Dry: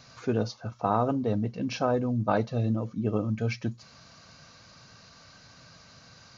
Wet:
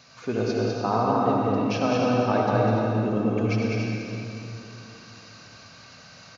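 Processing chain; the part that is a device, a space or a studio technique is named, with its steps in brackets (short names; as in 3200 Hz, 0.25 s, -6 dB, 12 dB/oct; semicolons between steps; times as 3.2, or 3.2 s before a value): stadium PA (HPF 150 Hz 6 dB/oct; bell 2600 Hz +3.5 dB 0.54 oct; loudspeakers at several distances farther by 69 m -3 dB, 87 m -11 dB, 99 m -9 dB; reverb RT60 2.9 s, pre-delay 64 ms, DRR -1 dB)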